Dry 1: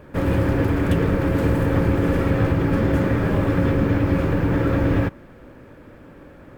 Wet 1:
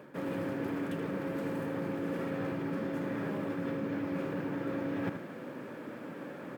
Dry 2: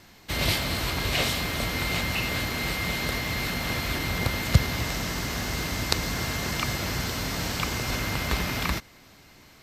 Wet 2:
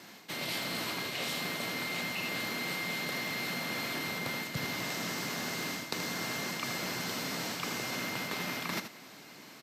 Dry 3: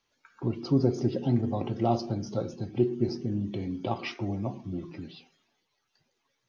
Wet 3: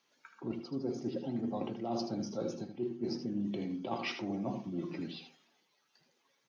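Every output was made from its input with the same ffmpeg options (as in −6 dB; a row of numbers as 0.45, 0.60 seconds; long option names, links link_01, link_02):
-af "highpass=frequency=160:width=0.5412,highpass=frequency=160:width=1.3066,areverse,acompressor=threshold=-35dB:ratio=12,areverse,aecho=1:1:78:0.355,volume=2dB"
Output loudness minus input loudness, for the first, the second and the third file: −16.0, −7.0, −8.0 LU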